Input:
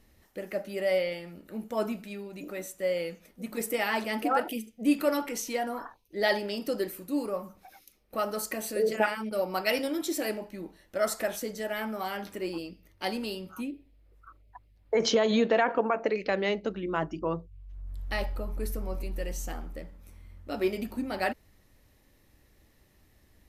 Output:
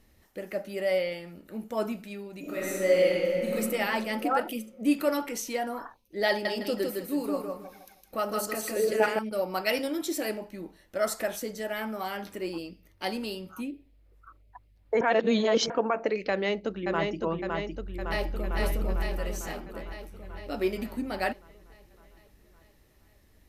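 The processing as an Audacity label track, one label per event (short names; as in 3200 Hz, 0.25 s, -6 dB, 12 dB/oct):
2.400000	3.540000	reverb throw, RT60 2.8 s, DRR -7.5 dB
6.290000	9.190000	feedback echo 0.159 s, feedback 28%, level -3.5 dB
15.010000	15.700000	reverse
16.300000	17.190000	echo throw 0.56 s, feedback 65%, level -3.5 dB
17.860000	18.580000	echo throw 0.45 s, feedback 65%, level -2 dB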